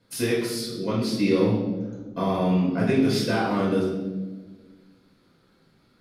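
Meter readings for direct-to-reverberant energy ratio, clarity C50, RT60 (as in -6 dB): -5.5 dB, 2.0 dB, 1.4 s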